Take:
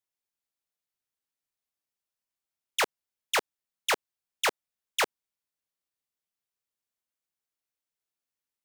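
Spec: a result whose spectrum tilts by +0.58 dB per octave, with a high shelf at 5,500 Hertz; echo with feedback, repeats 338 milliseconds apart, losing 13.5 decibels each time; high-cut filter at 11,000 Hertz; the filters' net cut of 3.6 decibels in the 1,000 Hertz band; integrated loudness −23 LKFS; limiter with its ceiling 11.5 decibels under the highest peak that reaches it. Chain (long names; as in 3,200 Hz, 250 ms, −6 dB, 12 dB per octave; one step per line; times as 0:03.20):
low-pass filter 11,000 Hz
parametric band 1,000 Hz −4.5 dB
high-shelf EQ 5,500 Hz −5.5 dB
brickwall limiter −30.5 dBFS
repeating echo 338 ms, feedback 21%, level −13.5 dB
level +20 dB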